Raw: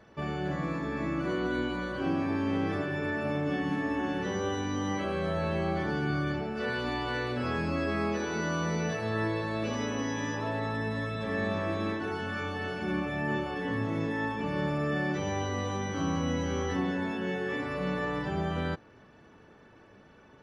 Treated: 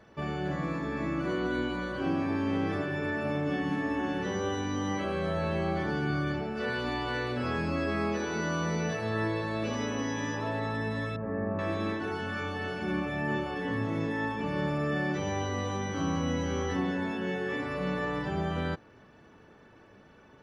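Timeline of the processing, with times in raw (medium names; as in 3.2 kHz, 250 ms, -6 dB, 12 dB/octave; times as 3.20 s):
11.16–11.59 s: Gaussian low-pass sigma 6 samples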